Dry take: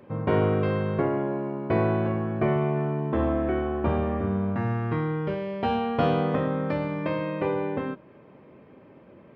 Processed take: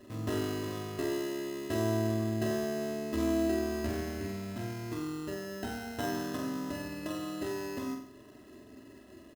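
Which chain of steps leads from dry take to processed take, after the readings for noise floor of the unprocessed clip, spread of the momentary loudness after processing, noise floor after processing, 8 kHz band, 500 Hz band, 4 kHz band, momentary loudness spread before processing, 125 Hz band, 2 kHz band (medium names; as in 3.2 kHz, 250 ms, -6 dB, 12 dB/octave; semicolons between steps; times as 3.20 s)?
-52 dBFS, 21 LU, -54 dBFS, no reading, -9.0 dB, 0.0 dB, 5 LU, -11.0 dB, -6.5 dB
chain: band-stop 910 Hz, Q 12; compression 1.5:1, threshold -42 dBFS, peak gain reduction 8.5 dB; bass shelf 93 Hz +8.5 dB; comb 3 ms, depth 92%; sample-rate reducer 2.3 kHz, jitter 0%; peaking EQ 230 Hz +4 dB 1.3 oct; flutter echo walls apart 7.8 m, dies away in 0.55 s; trim -8.5 dB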